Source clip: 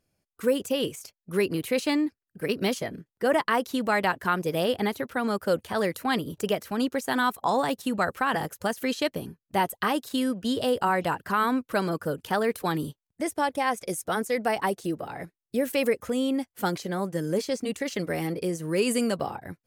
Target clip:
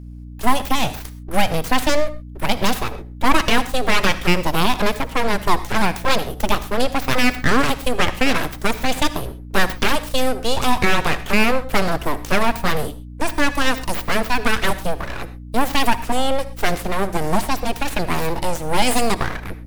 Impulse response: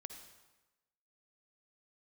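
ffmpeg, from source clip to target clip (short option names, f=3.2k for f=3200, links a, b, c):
-filter_complex "[0:a]aeval=exprs='abs(val(0))':c=same,aeval=exprs='val(0)+0.00562*(sin(2*PI*60*n/s)+sin(2*PI*2*60*n/s)/2+sin(2*PI*3*60*n/s)/3+sin(2*PI*4*60*n/s)/4+sin(2*PI*5*60*n/s)/5)':c=same,asplit=2[a][b];[1:a]atrim=start_sample=2205,atrim=end_sample=6174[c];[b][c]afir=irnorm=-1:irlink=0,volume=4dB[d];[a][d]amix=inputs=2:normalize=0,volume=5.5dB"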